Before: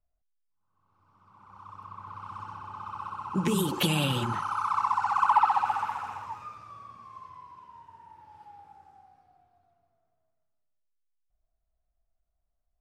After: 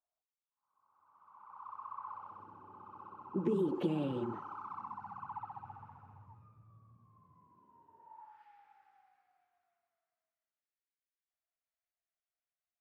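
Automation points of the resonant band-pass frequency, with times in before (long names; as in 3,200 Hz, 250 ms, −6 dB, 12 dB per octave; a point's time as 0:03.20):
resonant band-pass, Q 1.9
0:02.07 970 Hz
0:02.47 360 Hz
0:04.49 360 Hz
0:05.40 120 Hz
0:07.00 120 Hz
0:07.96 390 Hz
0:08.44 2,000 Hz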